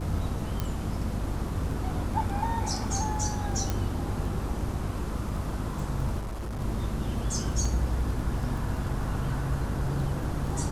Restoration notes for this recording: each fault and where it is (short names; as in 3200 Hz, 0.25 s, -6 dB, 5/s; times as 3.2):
crackle 12/s -34 dBFS
hum 50 Hz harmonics 7 -34 dBFS
0.6 pop -15 dBFS
3.7 pop
6.19–6.61 clipped -31 dBFS
7.65 gap 3.5 ms